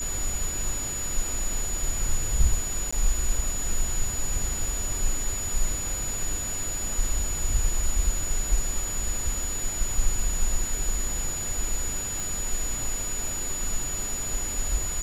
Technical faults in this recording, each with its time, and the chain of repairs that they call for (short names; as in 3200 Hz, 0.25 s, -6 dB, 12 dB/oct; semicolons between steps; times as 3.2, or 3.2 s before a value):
tone 6900 Hz -30 dBFS
2.91–2.92 gap 15 ms
12.2 pop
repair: de-click; notch 6900 Hz, Q 30; interpolate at 2.91, 15 ms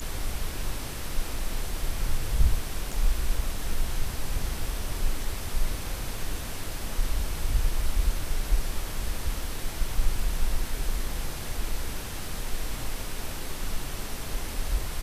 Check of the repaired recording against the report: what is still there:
none